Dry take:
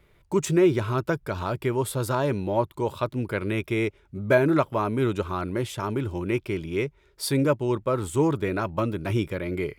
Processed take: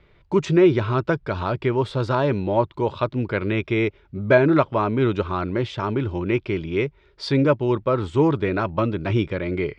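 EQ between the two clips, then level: low-pass 4.7 kHz 24 dB/octave; +4.0 dB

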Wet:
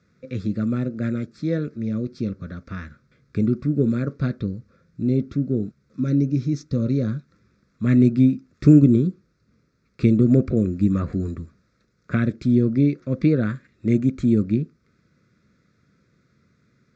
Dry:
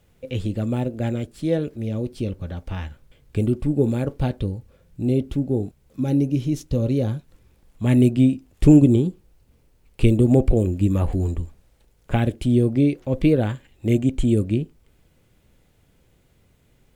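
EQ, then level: cabinet simulation 120–6700 Hz, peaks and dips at 140 Hz +3 dB, 210 Hz +6 dB, 710 Hz +3 dB, 1.3 kHz +10 dB; static phaser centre 3 kHz, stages 6; 0.0 dB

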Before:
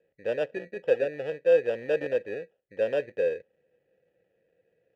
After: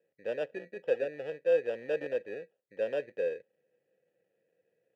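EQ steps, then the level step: high-pass 140 Hz 12 dB/octave; -5.5 dB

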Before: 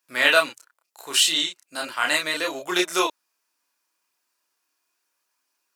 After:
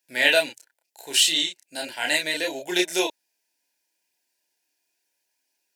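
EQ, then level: Butterworth band-stop 1.2 kHz, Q 1.7; 0.0 dB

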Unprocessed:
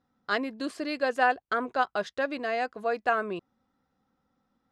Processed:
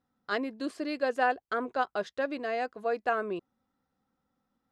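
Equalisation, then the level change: dynamic bell 380 Hz, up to +5 dB, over -38 dBFS, Q 0.97; -4.5 dB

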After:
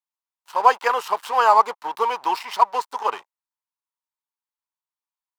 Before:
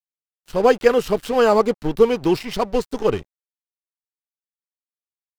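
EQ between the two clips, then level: resonant high-pass 950 Hz, resonance Q 5.7; -2.5 dB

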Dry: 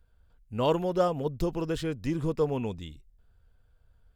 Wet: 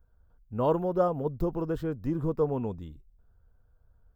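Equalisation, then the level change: high-order bell 4.6 kHz -15 dB 2.8 oct; 0.0 dB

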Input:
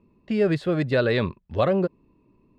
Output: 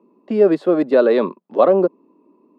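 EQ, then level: steep high-pass 170 Hz 48 dB/octave; high-order bell 550 Hz +13 dB 2.7 oct; -4.0 dB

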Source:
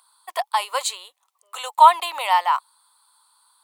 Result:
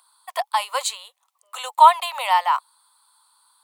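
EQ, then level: steep high-pass 480 Hz 48 dB/octave; 0.0 dB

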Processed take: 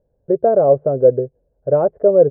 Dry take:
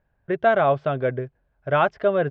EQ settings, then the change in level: resonant low-pass 500 Hz, resonance Q 4.9; distance through air 380 m; +2.0 dB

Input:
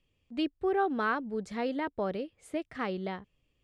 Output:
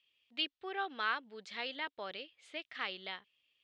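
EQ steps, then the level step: band-pass filter 3.4 kHz, Q 2; distance through air 62 m; +9.5 dB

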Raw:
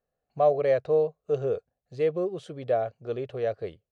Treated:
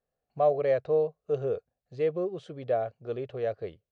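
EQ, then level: distance through air 68 m; -2.0 dB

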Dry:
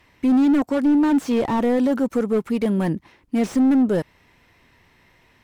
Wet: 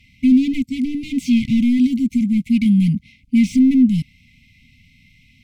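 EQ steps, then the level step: brick-wall FIR band-stop 270–2000 Hz; low-pass 4 kHz 6 dB/octave; +8.0 dB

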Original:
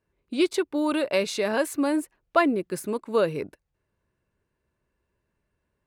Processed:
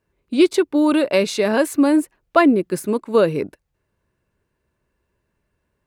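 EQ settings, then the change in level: dynamic bell 250 Hz, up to +5 dB, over -34 dBFS, Q 0.84; +5.0 dB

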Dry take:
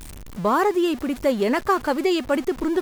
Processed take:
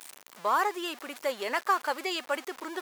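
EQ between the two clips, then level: high-pass 770 Hz 12 dB/octave; -3.0 dB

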